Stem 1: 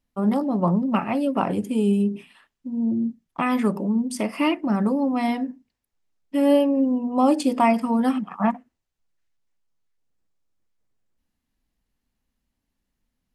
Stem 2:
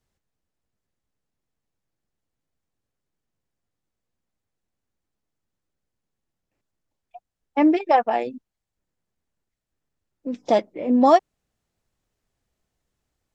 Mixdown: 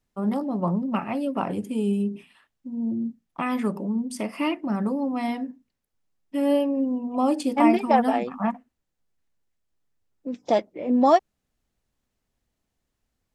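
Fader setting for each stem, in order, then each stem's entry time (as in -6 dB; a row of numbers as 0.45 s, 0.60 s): -4.0 dB, -2.5 dB; 0.00 s, 0.00 s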